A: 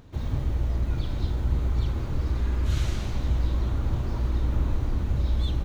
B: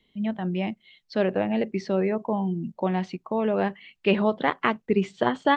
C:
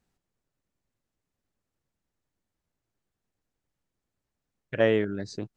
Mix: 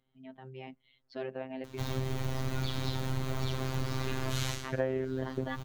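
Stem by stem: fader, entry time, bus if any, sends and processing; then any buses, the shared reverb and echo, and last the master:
+0.5 dB, 1.65 s, no send, tilt +2 dB/oct; AGC gain up to 6.5 dB; auto duck -21 dB, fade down 0.20 s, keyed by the third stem
-17.0 dB, 0.00 s, no send, dry
+1.0 dB, 0.00 s, no send, LPF 1400 Hz 12 dB/oct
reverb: off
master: AGC gain up to 5.5 dB; robotiser 131 Hz; compressor 5:1, threshold -28 dBFS, peak gain reduction 12.5 dB

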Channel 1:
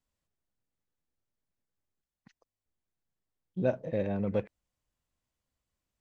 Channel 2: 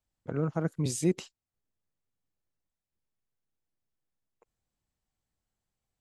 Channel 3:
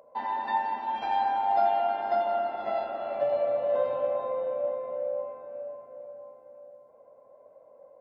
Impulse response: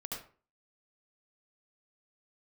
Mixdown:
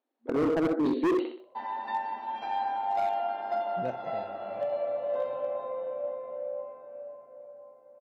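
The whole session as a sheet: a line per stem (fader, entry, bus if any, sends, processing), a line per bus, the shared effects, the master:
-6.5 dB, 0.20 s, no send, echo send -16.5 dB, auto duck -17 dB, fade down 0.40 s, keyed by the second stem
+1.5 dB, 0.00 s, send -5.5 dB, echo send -4.5 dB, FFT band-pass 230–4500 Hz; tilt shelf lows +9 dB, about 1300 Hz
-4.0 dB, 1.40 s, no send, no echo send, dry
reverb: on, RT60 0.40 s, pre-delay 67 ms
echo: feedback echo 63 ms, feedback 39%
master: HPF 130 Hz 6 dB/oct; hard clip -22.5 dBFS, distortion -7 dB

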